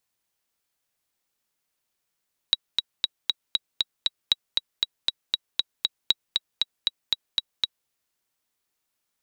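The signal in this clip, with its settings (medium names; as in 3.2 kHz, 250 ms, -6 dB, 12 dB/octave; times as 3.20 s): metronome 235 bpm, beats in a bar 7, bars 3, 3.86 kHz, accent 3.5 dB -5 dBFS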